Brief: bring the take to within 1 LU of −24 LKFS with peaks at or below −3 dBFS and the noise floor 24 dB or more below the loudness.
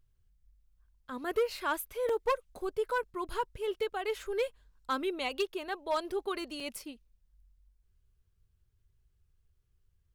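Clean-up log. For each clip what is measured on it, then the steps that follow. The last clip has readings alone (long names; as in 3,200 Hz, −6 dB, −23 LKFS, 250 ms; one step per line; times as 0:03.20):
share of clipped samples 0.5%; peaks flattened at −23.5 dBFS; number of dropouts 2; longest dropout 3.5 ms; integrated loudness −34.5 LKFS; sample peak −23.5 dBFS; target loudness −24.0 LKFS
→ clipped peaks rebuilt −23.5 dBFS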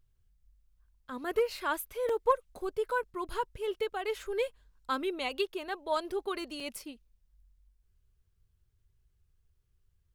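share of clipped samples 0.0%; number of dropouts 2; longest dropout 3.5 ms
→ repair the gap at 0:02.09/0:06.60, 3.5 ms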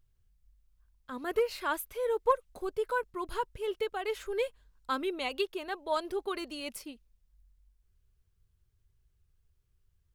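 number of dropouts 0; integrated loudness −34.0 LKFS; sample peak −14.5 dBFS; target loudness −24.0 LKFS
→ level +10 dB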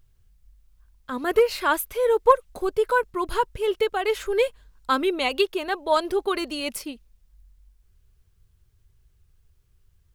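integrated loudness −24.0 LKFS; sample peak −4.5 dBFS; background noise floor −63 dBFS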